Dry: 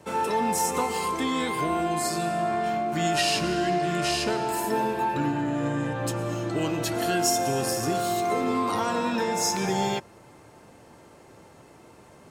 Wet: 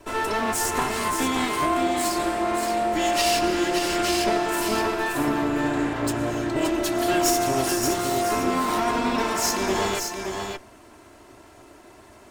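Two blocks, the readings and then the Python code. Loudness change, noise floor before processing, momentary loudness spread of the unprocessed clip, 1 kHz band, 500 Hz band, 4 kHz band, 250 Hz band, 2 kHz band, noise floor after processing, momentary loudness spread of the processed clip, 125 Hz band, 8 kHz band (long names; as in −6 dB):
+2.5 dB, −52 dBFS, 4 LU, +2.0 dB, +2.5 dB, +3.0 dB, +3.0 dB, +4.5 dB, −49 dBFS, 5 LU, −3.0 dB, +3.0 dB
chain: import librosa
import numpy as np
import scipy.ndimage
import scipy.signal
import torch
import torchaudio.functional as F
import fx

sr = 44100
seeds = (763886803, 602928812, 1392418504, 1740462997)

y = fx.lower_of_two(x, sr, delay_ms=3.0)
y = y + 10.0 ** (-5.5 / 20.0) * np.pad(y, (int(573 * sr / 1000.0), 0))[:len(y)]
y = y * librosa.db_to_amplitude(3.0)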